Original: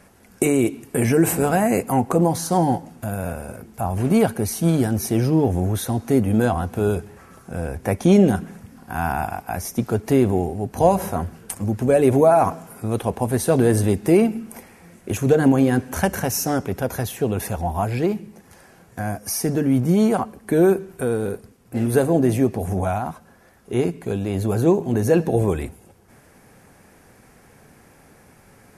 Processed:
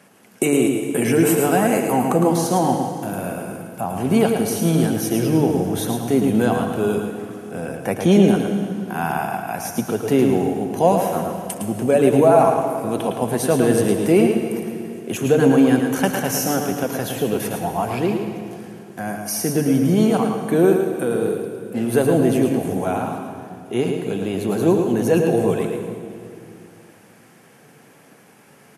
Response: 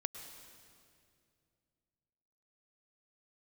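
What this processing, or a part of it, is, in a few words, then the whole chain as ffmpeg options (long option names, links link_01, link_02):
PA in a hall: -filter_complex "[0:a]highpass=frequency=140:width=0.5412,highpass=frequency=140:width=1.3066,equalizer=frequency=3000:width_type=o:width=0.37:gain=6,aecho=1:1:110:0.473[link_01];[1:a]atrim=start_sample=2205[link_02];[link_01][link_02]afir=irnorm=-1:irlink=0,volume=1.5dB"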